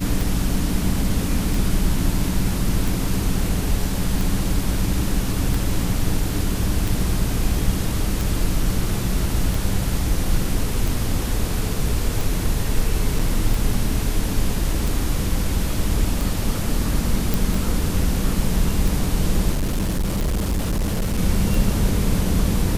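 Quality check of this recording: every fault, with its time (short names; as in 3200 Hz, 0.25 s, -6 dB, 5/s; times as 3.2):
tick 45 rpm
13.19 gap 4.6 ms
17.34 pop
19.52–21.19 clipped -18 dBFS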